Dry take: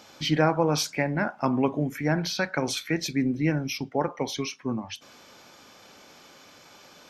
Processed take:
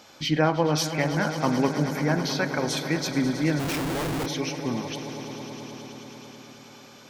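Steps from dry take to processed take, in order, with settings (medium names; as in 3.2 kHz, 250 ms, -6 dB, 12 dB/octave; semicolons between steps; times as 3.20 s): echo with a slow build-up 108 ms, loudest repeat 5, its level -15 dB; 3.59–4.26 s: Schmitt trigger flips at -33 dBFS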